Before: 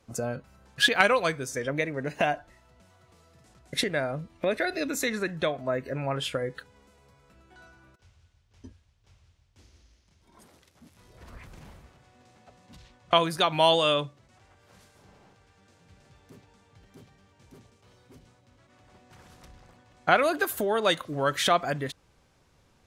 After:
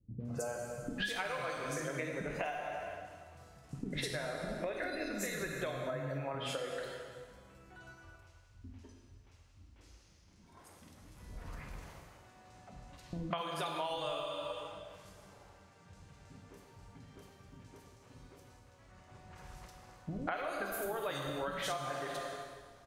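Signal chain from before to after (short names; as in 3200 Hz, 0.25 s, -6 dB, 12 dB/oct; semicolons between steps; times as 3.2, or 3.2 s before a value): in parallel at -12 dB: Schmitt trigger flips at -17.5 dBFS; on the sum: three bands offset in time lows, mids, highs 0.2/0.25 s, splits 280/3400 Hz; plate-style reverb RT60 1.6 s, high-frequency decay 0.9×, DRR 1 dB; compressor 8:1, threshold -33 dBFS, peak gain reduction 18.5 dB; 13.3–13.9 HPF 140 Hz 24 dB/oct; gain -2 dB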